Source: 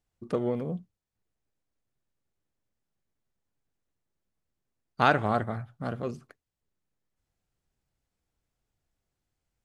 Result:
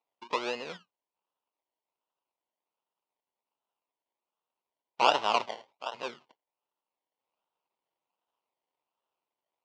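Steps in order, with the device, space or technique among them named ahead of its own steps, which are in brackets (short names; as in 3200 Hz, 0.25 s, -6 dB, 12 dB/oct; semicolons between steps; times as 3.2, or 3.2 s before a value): 5.45–5.93 HPF 250 Hz -> 660 Hz 12 dB/oct; circuit-bent sampling toy (decimation with a swept rate 27×, swing 60% 1.3 Hz; speaker cabinet 550–5300 Hz, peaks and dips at 950 Hz +8 dB, 1700 Hz -8 dB, 2800 Hz +6 dB)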